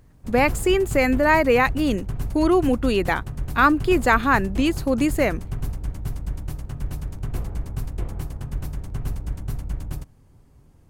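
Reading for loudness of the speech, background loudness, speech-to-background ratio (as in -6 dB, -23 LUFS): -20.5 LUFS, -32.0 LUFS, 11.5 dB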